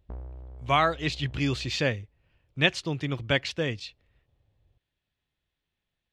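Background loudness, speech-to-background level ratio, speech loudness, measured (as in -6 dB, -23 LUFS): -46.0 LUFS, 18.5 dB, -27.5 LUFS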